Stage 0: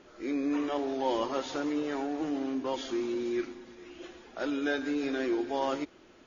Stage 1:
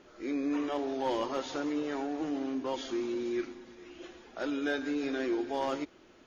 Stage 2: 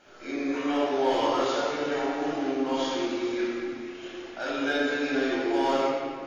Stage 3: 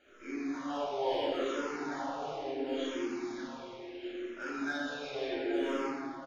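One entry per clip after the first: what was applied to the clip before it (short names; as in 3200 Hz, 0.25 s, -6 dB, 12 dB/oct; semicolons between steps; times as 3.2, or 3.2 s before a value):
hard clip -22 dBFS, distortion -27 dB; gain -1.5 dB
low shelf 360 Hz -11 dB; reverb RT60 2.0 s, pre-delay 19 ms, DRR -7 dB
outdoor echo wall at 140 m, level -10 dB; endless phaser -0.72 Hz; gain -5.5 dB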